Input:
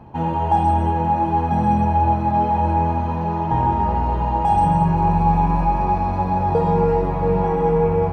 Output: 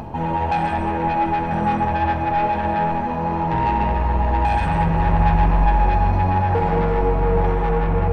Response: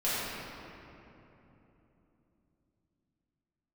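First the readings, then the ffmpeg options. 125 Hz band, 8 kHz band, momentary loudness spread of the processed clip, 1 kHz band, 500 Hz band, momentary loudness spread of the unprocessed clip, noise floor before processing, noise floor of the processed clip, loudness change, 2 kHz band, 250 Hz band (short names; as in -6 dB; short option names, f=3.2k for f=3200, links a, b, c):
-0.5 dB, n/a, 4 LU, -1.5 dB, -2.0 dB, 4 LU, -23 dBFS, -23 dBFS, -1.0 dB, +9.0 dB, -2.0 dB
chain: -filter_complex "[0:a]asoftclip=type=tanh:threshold=-17.5dB,acompressor=mode=upward:threshold=-26dB:ratio=2.5,asplit=2[a][b];[b]equalizer=f=160:t=o:w=0.67:g=-11,equalizer=f=630:t=o:w=0.67:g=5,equalizer=f=2.5k:t=o:w=0.67:g=4[c];[1:a]atrim=start_sample=2205,lowshelf=f=150:g=11[d];[c][d]afir=irnorm=-1:irlink=0,volume=-15.5dB[e];[a][e]amix=inputs=2:normalize=0"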